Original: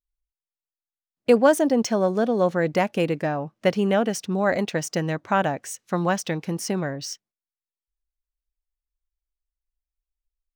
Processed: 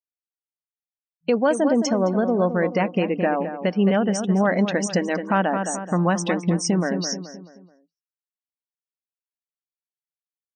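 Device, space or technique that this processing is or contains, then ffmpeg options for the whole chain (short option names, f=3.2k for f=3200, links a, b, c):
low-bitrate web radio: -filter_complex "[0:a]afftdn=nr=31:nf=-36,afftfilt=real='re*between(b*sr/4096,170,9200)':imag='im*between(b*sr/4096,170,9200)':win_size=4096:overlap=0.75,asubboost=boost=2:cutoff=220,asplit=2[a][b];[b]adelay=215,lowpass=f=2.2k:p=1,volume=-10dB,asplit=2[c][d];[d]adelay=215,lowpass=f=2.2k:p=1,volume=0.42,asplit=2[e][f];[f]adelay=215,lowpass=f=2.2k:p=1,volume=0.42,asplit=2[g][h];[h]adelay=215,lowpass=f=2.2k:p=1,volume=0.42[i];[a][c][e][g][i]amix=inputs=5:normalize=0,dynaudnorm=f=440:g=5:m=5.5dB,alimiter=limit=-11.5dB:level=0:latency=1:release=279,volume=2dB" -ar 44100 -c:a libmp3lame -b:a 40k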